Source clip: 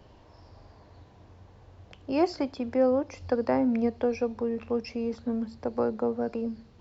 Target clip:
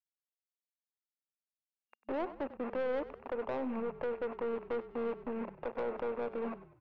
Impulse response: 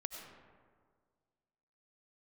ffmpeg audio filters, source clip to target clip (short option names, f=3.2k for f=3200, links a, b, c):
-filter_complex "[0:a]acrossover=split=460|2200[a][b][c];[c]acompressor=threshold=-56dB:ratio=6[d];[a][b][d]amix=inputs=3:normalize=0,acrusher=bits=5:mix=0:aa=0.000001,afftfilt=real='re*between(b*sr/4096,220,2800)':imag='im*between(b*sr/4096,220,2800)':win_size=4096:overlap=0.75,alimiter=limit=-23dB:level=0:latency=1:release=254,equalizer=f=500:t=o:w=1:g=8,equalizer=f=1k:t=o:w=1:g=9,equalizer=f=2k:t=o:w=1:g=-4,aeval=exprs='(tanh(17.8*val(0)+0.25)-tanh(0.25))/17.8':c=same,adynamicequalizer=threshold=0.00355:dfrequency=1700:dqfactor=5.3:tfrequency=1700:tqfactor=5.3:attack=5:release=100:ratio=0.375:range=2:mode=cutabove:tftype=bell,asplit=5[e][f][g][h][i];[f]adelay=97,afreqshift=-36,volume=-15dB[j];[g]adelay=194,afreqshift=-72,volume=-22.3dB[k];[h]adelay=291,afreqshift=-108,volume=-29.7dB[l];[i]adelay=388,afreqshift=-144,volume=-37dB[m];[e][j][k][l][m]amix=inputs=5:normalize=0,volume=-6.5dB"